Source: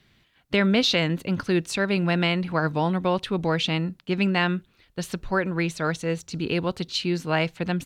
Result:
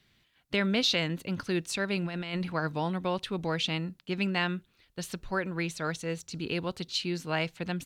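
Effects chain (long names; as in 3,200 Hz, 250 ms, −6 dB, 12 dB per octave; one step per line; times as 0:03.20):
high-shelf EQ 2,700 Hz +5.5 dB
0:02.05–0:02.50: compressor whose output falls as the input rises −25 dBFS, ratio −0.5
level −7.5 dB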